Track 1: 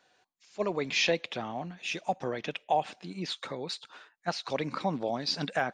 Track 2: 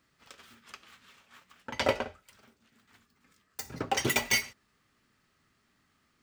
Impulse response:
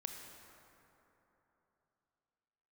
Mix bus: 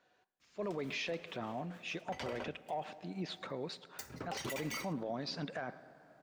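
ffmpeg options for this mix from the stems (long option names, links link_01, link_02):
-filter_complex "[0:a]highshelf=frequency=2900:gain=-11,bandreject=frequency=810:width=12,asoftclip=type=tanh:threshold=-17dB,volume=-4dB,asplit=3[link_01][link_02][link_03];[link_02]volume=-11.5dB[link_04];[link_03]volume=-23dB[link_05];[1:a]alimiter=limit=-18dB:level=0:latency=1:release=114,adelay=400,volume=-7dB,asplit=2[link_06][link_07];[link_07]volume=-21dB[link_08];[2:a]atrim=start_sample=2205[link_09];[link_04][link_08]amix=inputs=2:normalize=0[link_10];[link_10][link_09]afir=irnorm=-1:irlink=0[link_11];[link_05]aecho=0:1:113:1[link_12];[link_01][link_06][link_11][link_12]amix=inputs=4:normalize=0,alimiter=level_in=6.5dB:limit=-24dB:level=0:latency=1:release=31,volume=-6.5dB"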